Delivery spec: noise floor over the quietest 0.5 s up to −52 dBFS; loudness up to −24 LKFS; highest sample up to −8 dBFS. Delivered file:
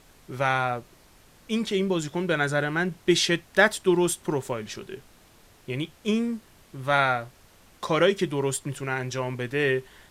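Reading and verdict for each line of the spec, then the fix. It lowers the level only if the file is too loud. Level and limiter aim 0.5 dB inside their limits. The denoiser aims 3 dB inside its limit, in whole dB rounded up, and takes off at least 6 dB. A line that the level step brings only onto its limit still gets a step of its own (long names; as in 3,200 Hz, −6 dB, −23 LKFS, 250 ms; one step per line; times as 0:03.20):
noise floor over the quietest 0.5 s −55 dBFS: in spec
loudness −25.5 LKFS: in spec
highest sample −6.0 dBFS: out of spec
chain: brickwall limiter −8.5 dBFS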